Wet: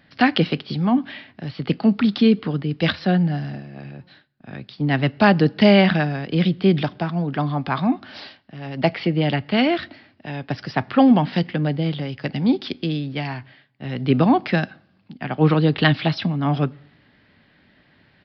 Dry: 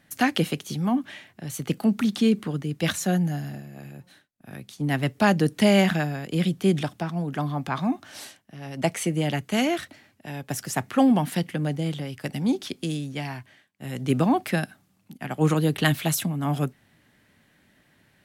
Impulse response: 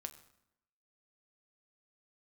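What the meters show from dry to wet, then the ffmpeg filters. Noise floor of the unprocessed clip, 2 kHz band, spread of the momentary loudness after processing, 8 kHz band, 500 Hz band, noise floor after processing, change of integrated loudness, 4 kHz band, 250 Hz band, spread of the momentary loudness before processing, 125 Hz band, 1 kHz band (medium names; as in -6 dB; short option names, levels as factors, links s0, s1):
-63 dBFS, +5.0 dB, 18 LU, under -20 dB, +5.0 dB, -58 dBFS, +5.0 dB, +5.0 dB, +5.0 dB, 18 LU, +5.0 dB, +5.0 dB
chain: -filter_complex "[0:a]asplit=2[s0][s1];[1:a]atrim=start_sample=2205,asetrate=48510,aresample=44100[s2];[s1][s2]afir=irnorm=-1:irlink=0,volume=0.473[s3];[s0][s3]amix=inputs=2:normalize=0,aresample=11025,aresample=44100,volume=1.41"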